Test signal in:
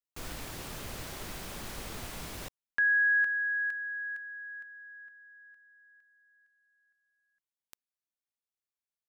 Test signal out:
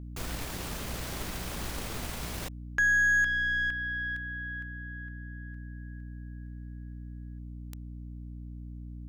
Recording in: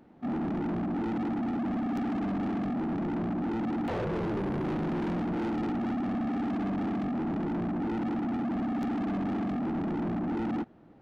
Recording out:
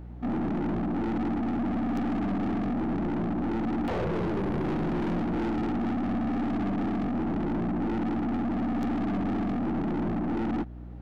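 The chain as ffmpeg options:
ffmpeg -i in.wav -filter_complex "[0:a]aeval=exprs='0.0841*(cos(1*acos(clip(val(0)/0.0841,-1,1)))-cos(1*PI/2))+0.00841*(cos(4*acos(clip(val(0)/0.0841,-1,1)))-cos(4*PI/2))+0.00106*(cos(7*acos(clip(val(0)/0.0841,-1,1)))-cos(7*PI/2))':channel_layout=same,asplit=2[link_01][link_02];[link_02]acompressor=threshold=-39dB:ratio=6:release=243,volume=-2.5dB[link_03];[link_01][link_03]amix=inputs=2:normalize=0,aeval=exprs='val(0)+0.01*(sin(2*PI*60*n/s)+sin(2*PI*2*60*n/s)/2+sin(2*PI*3*60*n/s)/3+sin(2*PI*4*60*n/s)/4+sin(2*PI*5*60*n/s)/5)':channel_layout=same" out.wav

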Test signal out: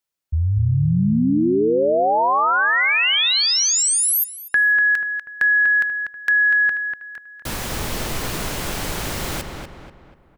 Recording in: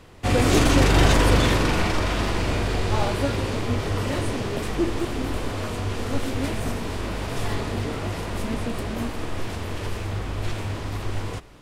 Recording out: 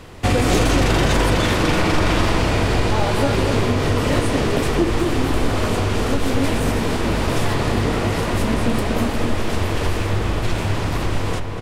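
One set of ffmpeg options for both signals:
ffmpeg -i in.wav -filter_complex "[0:a]acompressor=threshold=-23dB:ratio=4,asplit=2[link_01][link_02];[link_02]adelay=243,lowpass=frequency=2700:poles=1,volume=-5dB,asplit=2[link_03][link_04];[link_04]adelay=243,lowpass=frequency=2700:poles=1,volume=0.45,asplit=2[link_05][link_06];[link_06]adelay=243,lowpass=frequency=2700:poles=1,volume=0.45,asplit=2[link_07][link_08];[link_08]adelay=243,lowpass=frequency=2700:poles=1,volume=0.45,asplit=2[link_09][link_10];[link_10]adelay=243,lowpass=frequency=2700:poles=1,volume=0.45,asplit=2[link_11][link_12];[link_12]adelay=243,lowpass=frequency=2700:poles=1,volume=0.45[link_13];[link_01][link_03][link_05][link_07][link_09][link_11][link_13]amix=inputs=7:normalize=0,volume=8.5dB" out.wav

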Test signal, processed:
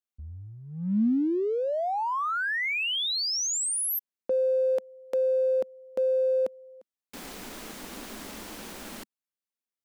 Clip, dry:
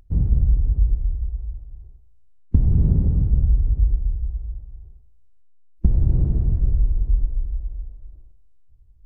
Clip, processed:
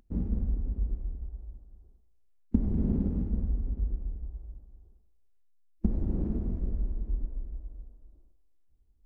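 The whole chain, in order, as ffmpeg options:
ffmpeg -i in.wav -filter_complex "[0:a]lowshelf=frequency=170:width_type=q:width=3:gain=-8,asplit=2[link_01][link_02];[link_02]aeval=exprs='sgn(val(0))*max(abs(val(0))-0.0119,0)':channel_layout=same,volume=-11dB[link_03];[link_01][link_03]amix=inputs=2:normalize=0,volume=-5.5dB" out.wav

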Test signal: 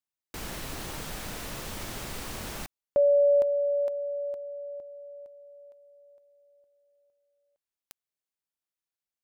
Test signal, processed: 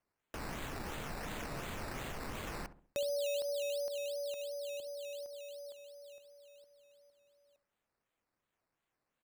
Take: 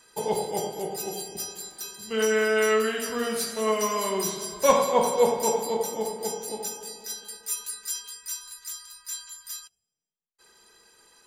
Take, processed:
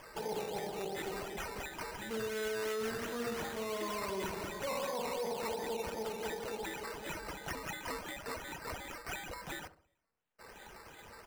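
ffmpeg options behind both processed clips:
ffmpeg -i in.wav -filter_complex "[0:a]acrusher=samples=11:mix=1:aa=0.000001:lfo=1:lforange=6.6:lforate=2.8,alimiter=limit=-19.5dB:level=0:latency=1:release=37,acompressor=threshold=-46dB:ratio=2.5:attack=0.84:release=150:detection=peak,asplit=2[link_01][link_02];[link_02]adelay=67,lowpass=frequency=960:poles=1,volume=-12dB,asplit=2[link_03][link_04];[link_04]adelay=67,lowpass=frequency=960:poles=1,volume=0.43,asplit=2[link_05][link_06];[link_06]adelay=67,lowpass=frequency=960:poles=1,volume=0.43,asplit=2[link_07][link_08];[link_08]adelay=67,lowpass=frequency=960:poles=1,volume=0.43[link_09];[link_03][link_05][link_07][link_09]amix=inputs=4:normalize=0[link_10];[link_01][link_10]amix=inputs=2:normalize=0,volume=4.5dB" out.wav

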